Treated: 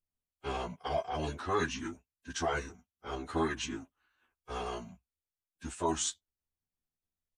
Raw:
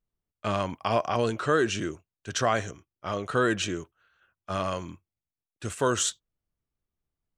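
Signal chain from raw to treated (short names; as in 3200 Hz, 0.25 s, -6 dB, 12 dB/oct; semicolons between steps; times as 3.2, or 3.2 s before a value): high shelf 8200 Hz +6 dB; formant-preserving pitch shift -7.5 st; doubler 12 ms -3 dB; gain -9 dB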